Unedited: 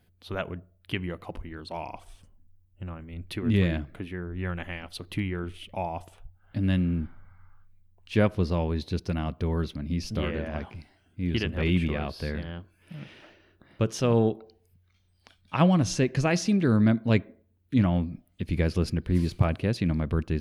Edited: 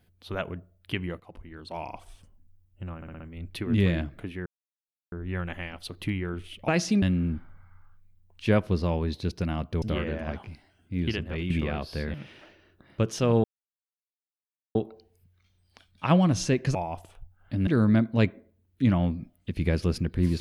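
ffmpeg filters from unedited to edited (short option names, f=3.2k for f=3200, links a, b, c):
-filter_complex "[0:a]asplit=15[a][b][c][d][e][f][g][h][i][j][k][l][m][n][o];[a]atrim=end=1.2,asetpts=PTS-STARTPTS,afade=t=out:st=1.196:d=0.004:c=hsin:silence=0.188365[p];[b]atrim=start=1.2:end=3.022,asetpts=PTS-STARTPTS,afade=t=in:d=0.63:silence=0.188365[q];[c]atrim=start=2.958:end=3.022[r];[d]atrim=start=2.958:end=3.022[s];[e]atrim=start=2.958:end=3.022[t];[f]atrim=start=2.958:end=4.22,asetpts=PTS-STARTPTS,afade=t=out:st=1.258:d=0.004:c=hsin,apad=pad_dur=0.66[u];[g]atrim=start=4.22:end=5.782,asetpts=PTS-STARTPTS,afade=t=in:d=0.004:c=hsin[v];[h]atrim=start=16.248:end=16.592[w];[i]atrim=start=6.698:end=9.502[x];[j]atrim=start=10.088:end=11.77,asetpts=PTS-STARTPTS,afade=t=out:st=1.182:d=0.5:silence=0.334965[y];[k]atrim=start=11.77:end=12.412,asetpts=PTS-STARTPTS,afade=t=in:d=0.004:c=hsin:silence=0.334965[z];[l]atrim=start=12.948:end=14.25,asetpts=PTS-STARTPTS,afade=t=out:st=1.298:d=0.004:c=hsin,apad=pad_dur=1.31[aa];[m]atrim=start=14.25:end=16.252,asetpts=PTS-STARTPTS,afade=t=in:d=0.004:c=hsin[ab];[n]atrim=start=5.778:end=6.702[ac];[o]atrim=start=16.588[ad];[p][q]concat=n=2:v=0:a=1[ae];[ae][r]acrossfade=d=0.004:c1=hsin:c2=hsin[af];[af][s]acrossfade=d=0.004:c1=hsin:c2=hsin[ag];[ag][t]acrossfade=d=0.004:c1=hsin:c2=hsin[ah];[u][v]concat=n=2:v=0:a=1[ai];[ah][ai]acrossfade=d=0.004:c1=hsin:c2=hsin[aj];[aj][w]acrossfade=d=0.004:c1=hsin:c2=hsin[ak];[ak][x]acrossfade=d=0.004:c1=hsin:c2=hsin[al];[y][z]concat=n=2:v=0:a=1[am];[al][am]acrossfade=d=0.004:c1=hsin:c2=hsin[an];[aa][ab]concat=n=2:v=0:a=1[ao];[an][ao]acrossfade=d=0.004:c1=hsin:c2=hsin[ap];[ap][ac]acrossfade=d=0.004:c1=hsin:c2=hsin[aq];[aq][ad]acrossfade=d=0.004:c1=hsin:c2=hsin"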